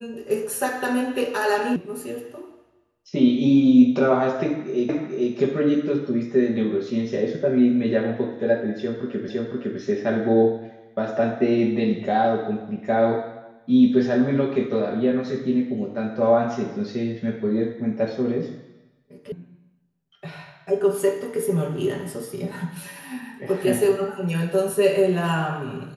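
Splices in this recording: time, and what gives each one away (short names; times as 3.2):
1.76 sound cut off
4.89 repeat of the last 0.44 s
9.29 repeat of the last 0.51 s
19.32 sound cut off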